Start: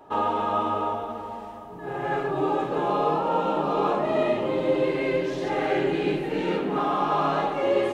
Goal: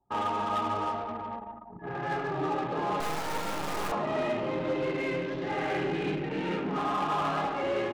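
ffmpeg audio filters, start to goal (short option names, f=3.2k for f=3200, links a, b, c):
-filter_complex "[0:a]equalizer=f=460:t=o:w=1.7:g=-7,aecho=1:1:173|346|519:0.211|0.0655|0.0203,asplit=2[a][b];[b]aeval=exprs='(mod(35.5*val(0)+1,2)-1)/35.5':c=same,volume=-10.5dB[c];[a][c]amix=inputs=2:normalize=0,lowpass=f=3k:p=1,asoftclip=type=hard:threshold=-24.5dB,highpass=46,asettb=1/sr,asplit=3[d][e][f];[d]atrim=end=3.004[g];[e]atrim=start=3:end=3.92,asetpts=PTS-STARTPTS,afade=t=in:d=0.004:c=qsin,afade=t=out:st=0.916:d=0.004:c=qsin,acrusher=bits=3:dc=4:mix=0:aa=0.000001[h];[f]atrim=start=3.916[i];[g][h]acrossfade=d=0.004:c1=hsin:c2=qsin[j];[j][i]acrossfade=d=0.004:c1=qsin:c2=hsin,bandreject=f=72.7:t=h:w=4,bandreject=f=145.4:t=h:w=4,bandreject=f=218.1:t=h:w=4,bandreject=f=290.8:t=h:w=4,bandreject=f=363.5:t=h:w=4,bandreject=f=436.2:t=h:w=4,bandreject=f=508.9:t=h:w=4,bandreject=f=581.6:t=h:w=4,bandreject=f=654.3:t=h:w=4,bandreject=f=727:t=h:w=4,bandreject=f=799.7:t=h:w=4,bandreject=f=872.4:t=h:w=4,bandreject=f=945.1:t=h:w=4,bandreject=f=1.0178k:t=h:w=4,bandreject=f=1.0905k:t=h:w=4,bandreject=f=1.1632k:t=h:w=4,bandreject=f=1.2359k:t=h:w=4,bandreject=f=1.3086k:t=h:w=4,anlmdn=1.58"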